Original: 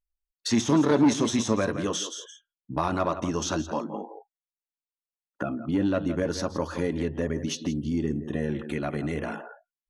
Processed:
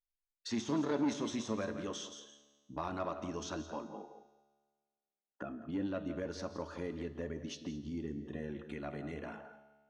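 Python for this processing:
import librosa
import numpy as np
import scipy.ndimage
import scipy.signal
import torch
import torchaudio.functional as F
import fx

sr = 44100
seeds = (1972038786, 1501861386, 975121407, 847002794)

y = scipy.signal.sosfilt(scipy.signal.butter(2, 6300.0, 'lowpass', fs=sr, output='sos'), x)
y = fx.peak_eq(y, sr, hz=130.0, db=-5.5, octaves=0.52)
y = fx.comb_fb(y, sr, f0_hz=72.0, decay_s=1.6, harmonics='all', damping=0.0, mix_pct=60)
y = y + 10.0 ** (-18.5 / 20.0) * np.pad(y, (int(213 * sr / 1000.0), 0))[:len(y)]
y = y * librosa.db_to_amplitude(-5.0)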